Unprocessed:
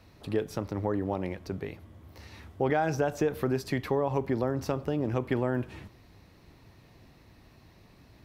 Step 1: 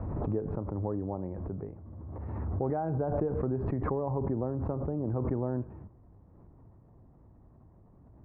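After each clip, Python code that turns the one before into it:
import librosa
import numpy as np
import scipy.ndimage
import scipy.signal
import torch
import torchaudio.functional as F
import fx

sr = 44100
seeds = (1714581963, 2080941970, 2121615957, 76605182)

y = scipy.signal.sosfilt(scipy.signal.butter(4, 1100.0, 'lowpass', fs=sr, output='sos'), x)
y = fx.low_shelf(y, sr, hz=190.0, db=6.5)
y = fx.pre_swell(y, sr, db_per_s=22.0)
y = y * librosa.db_to_amplitude(-6.0)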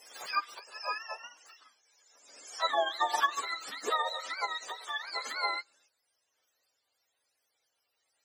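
y = fx.octave_mirror(x, sr, pivot_hz=720.0)
y = fx.upward_expand(y, sr, threshold_db=-46.0, expansion=2.5)
y = y * librosa.db_to_amplitude(8.5)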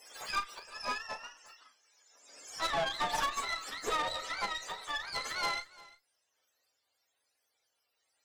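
y = fx.tube_stage(x, sr, drive_db=31.0, bias=0.75)
y = fx.doubler(y, sr, ms=35.0, db=-10.5)
y = y + 10.0 ** (-21.5 / 20.0) * np.pad(y, (int(349 * sr / 1000.0), 0))[:len(y)]
y = y * librosa.db_to_amplitude(3.5)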